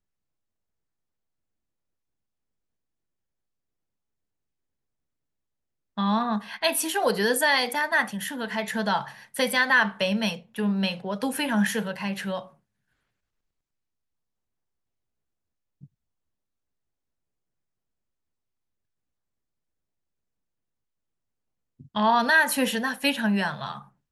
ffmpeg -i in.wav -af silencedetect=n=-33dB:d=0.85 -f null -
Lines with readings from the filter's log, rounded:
silence_start: 0.00
silence_end: 5.98 | silence_duration: 5.98
silence_start: 12.42
silence_end: 21.96 | silence_duration: 9.54